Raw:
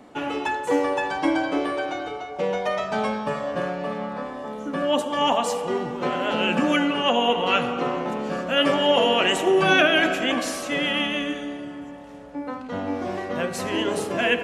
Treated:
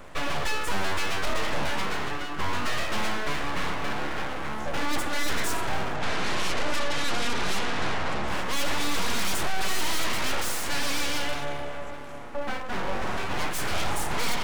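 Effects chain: fifteen-band EQ 160 Hz -12 dB, 630 Hz -5 dB, 4000 Hz -10 dB; full-wave rectifier; 5.96–8.28 LPF 8000 Hz 12 dB/oct; soft clip -26.5 dBFS, distortion -8 dB; gain +8 dB

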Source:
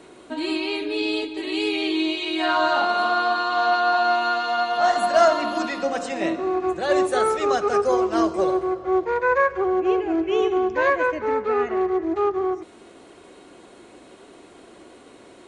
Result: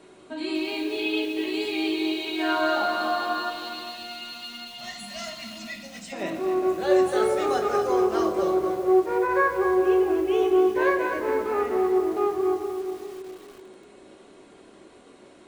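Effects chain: 0.98–1.47 synth low-pass 3000 Hz, resonance Q 1.6; 3.5–6.13 spectral gain 240–1800 Hz -19 dB; narrowing echo 0.407 s, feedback 40%, band-pass 360 Hz, level -7 dB; on a send at -4 dB: reverb RT60 0.50 s, pre-delay 5 ms; on the sum: lo-fi delay 0.242 s, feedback 35%, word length 6-bit, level -8 dB; gain -6 dB

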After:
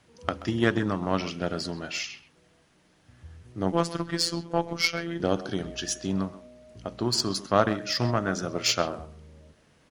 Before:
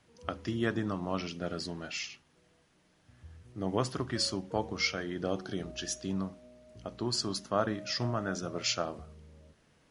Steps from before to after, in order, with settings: speakerphone echo 0.13 s, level -12 dB; added harmonics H 7 -26 dB, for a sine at -13 dBFS; 3.72–5.2 robotiser 169 Hz; gain +8.5 dB

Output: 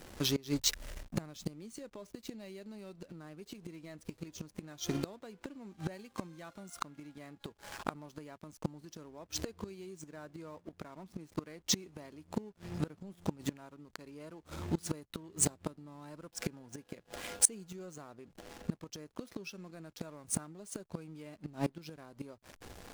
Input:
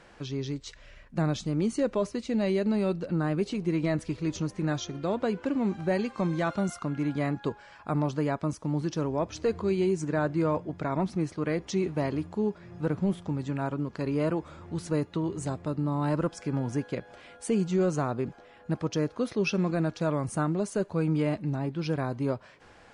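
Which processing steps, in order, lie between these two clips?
in parallel at +1 dB: compressor 4:1, threshold -40 dBFS, peak gain reduction 15.5 dB; on the sum: backlash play -39 dBFS; bell 130 Hz -7.5 dB 0.29 oct; flipped gate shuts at -22 dBFS, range -24 dB; pre-emphasis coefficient 0.8; gain +14.5 dB

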